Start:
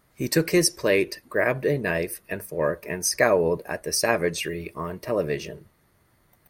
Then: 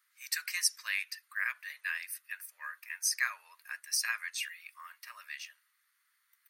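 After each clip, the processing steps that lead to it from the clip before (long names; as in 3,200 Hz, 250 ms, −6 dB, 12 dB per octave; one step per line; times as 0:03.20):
Butterworth high-pass 1,300 Hz 36 dB per octave
level −6 dB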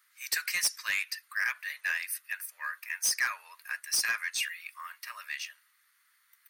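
soft clipping −28 dBFS, distortion −10 dB
level +6.5 dB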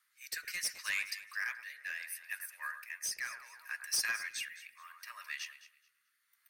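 delay that swaps between a low-pass and a high-pass 107 ms, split 2,000 Hz, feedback 52%, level −8.5 dB
rotating-speaker cabinet horn 0.7 Hz
level −4 dB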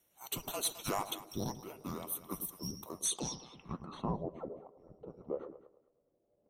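band-splitting scrambler in four parts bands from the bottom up 2341
low-pass filter sweep 14,000 Hz → 530 Hz, 0:02.93–0:04.23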